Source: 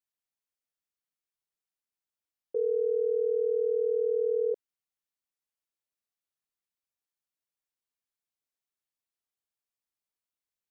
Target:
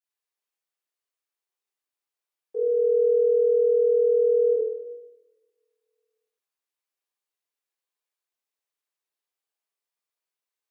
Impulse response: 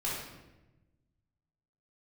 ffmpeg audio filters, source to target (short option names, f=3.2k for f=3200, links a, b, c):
-filter_complex "[0:a]highpass=f=360:w=0.5412,highpass=f=360:w=1.3066[a];[1:a]atrim=start_sample=2205[b];[a][b]afir=irnorm=-1:irlink=0,volume=-1.5dB"